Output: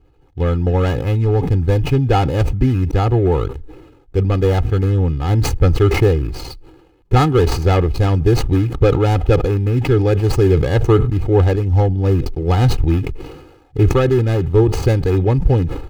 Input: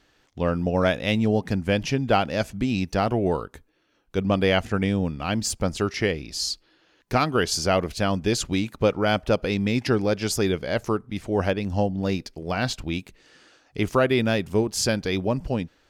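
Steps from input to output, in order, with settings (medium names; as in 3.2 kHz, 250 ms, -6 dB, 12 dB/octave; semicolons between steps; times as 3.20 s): median filter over 25 samples; treble shelf 3.9 kHz +6.5 dB; hard clipper -15 dBFS, distortion -19 dB; tone controls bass +11 dB, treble -9 dB; gain riding 0.5 s; comb 2.4 ms, depth 83%; decay stretcher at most 55 dB/s; trim +3 dB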